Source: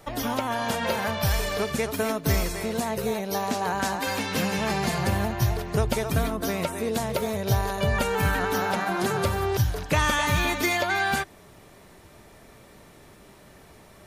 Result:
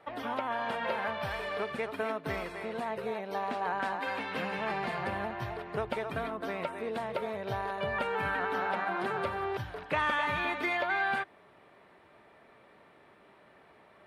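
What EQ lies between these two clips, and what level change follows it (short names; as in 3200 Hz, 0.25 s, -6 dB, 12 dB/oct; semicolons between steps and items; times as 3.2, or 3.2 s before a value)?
HPF 800 Hz 6 dB/oct; air absorption 470 m; bell 9000 Hz +7.5 dB 0.49 oct; 0.0 dB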